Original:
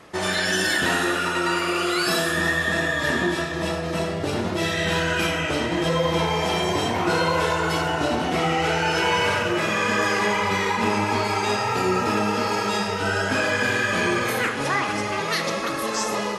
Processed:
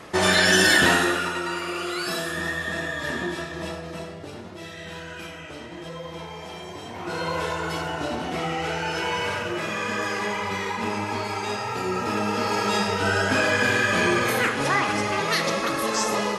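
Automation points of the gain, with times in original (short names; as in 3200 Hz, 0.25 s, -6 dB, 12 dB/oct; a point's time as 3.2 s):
0.81 s +5 dB
1.46 s -6 dB
3.63 s -6 dB
4.48 s -14.5 dB
6.83 s -14.5 dB
7.31 s -5.5 dB
11.84 s -5.5 dB
12.77 s +1 dB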